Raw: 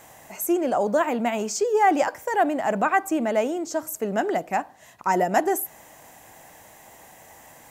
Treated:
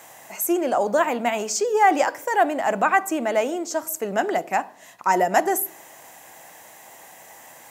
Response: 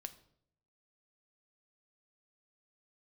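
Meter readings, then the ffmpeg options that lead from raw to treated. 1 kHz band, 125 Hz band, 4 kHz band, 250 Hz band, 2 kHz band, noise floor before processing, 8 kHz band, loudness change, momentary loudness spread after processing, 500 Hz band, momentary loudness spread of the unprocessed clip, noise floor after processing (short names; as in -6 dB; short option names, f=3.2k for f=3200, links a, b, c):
+2.5 dB, n/a, +4.0 dB, -1.5 dB, +3.5 dB, -50 dBFS, +4.0 dB, +1.5 dB, 9 LU, +1.0 dB, 9 LU, -47 dBFS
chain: -filter_complex "[0:a]highpass=f=640:p=1,asplit=2[a][b];[1:a]atrim=start_sample=2205,lowshelf=f=390:g=9[c];[b][c]afir=irnorm=-1:irlink=0,volume=0dB[d];[a][d]amix=inputs=2:normalize=0"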